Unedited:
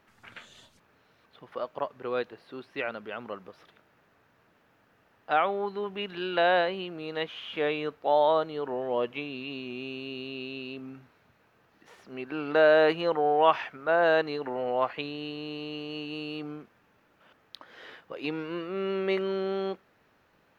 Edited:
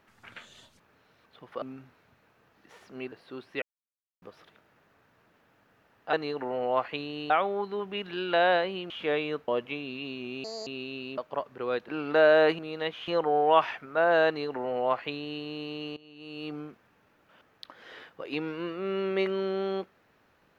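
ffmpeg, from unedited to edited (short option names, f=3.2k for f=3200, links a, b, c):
-filter_complex "[0:a]asplit=16[a][b][c][d][e][f][g][h][i][j][k][l][m][n][o][p];[a]atrim=end=1.622[q];[b]atrim=start=10.788:end=12.292[r];[c]atrim=start=2.328:end=2.83,asetpts=PTS-STARTPTS,afade=t=out:st=0.498:d=0.004:c=hsin[s];[d]atrim=start=2.83:end=3.43,asetpts=PTS-STARTPTS,volume=0[t];[e]atrim=start=3.43:end=5.342,asetpts=PTS-STARTPTS,afade=t=in:d=0.004:c=hsin[u];[f]atrim=start=14.178:end=15.352[v];[g]atrim=start=5.338:end=6.942[w];[h]atrim=start=7.428:end=8.012[x];[i]atrim=start=8.938:end=9.904[y];[j]atrim=start=9.9:end=10.28,asetpts=PTS-STARTPTS,asetrate=74088,aresample=44100[z];[k]atrim=start=10.276:end=10.792[aa];[l]atrim=start=1.618:end=2.332[ab];[m]atrim=start=12.288:end=12.992[ac];[n]atrim=start=6.938:end=7.432[ad];[o]atrim=start=12.988:end=15.88,asetpts=PTS-STARTPTS,afade=t=out:st=2.888:d=0.004:c=hsin:silence=0.112202[ae];[p]atrim=start=15.88,asetpts=PTS-STARTPTS,afade=t=in:d=0.51:c=qua:silence=0.112202[af];[q][r]acrossfade=d=0.004:c1=hsin:c2=hsin[ag];[s][t][u]concat=n=3:v=0:a=1[ah];[ag][ah]acrossfade=d=0.004:c1=hsin:c2=hsin[ai];[ai][v]acrossfade=d=0.004:c1=hsin:c2=hsin[aj];[aj][w]acrossfade=d=0.004:c1=hsin:c2=hsin[ak];[ak][x]acrossfade=d=0.004:c1=hsin:c2=hsin[al];[al][y]acrossfade=d=0.004:c1=hsin:c2=hsin[am];[am][z]acrossfade=d=0.004:c1=hsin:c2=hsin[an];[an][aa]acrossfade=d=0.004:c1=hsin:c2=hsin[ao];[ao][ab]acrossfade=d=0.004:c1=hsin:c2=hsin[ap];[ap][ac]acrossfade=d=0.004:c1=hsin:c2=hsin[aq];[aq][ad]acrossfade=d=0.004:c1=hsin:c2=hsin[ar];[ae][af]concat=n=2:v=0:a=1[as];[ar][as]acrossfade=d=0.004:c1=hsin:c2=hsin"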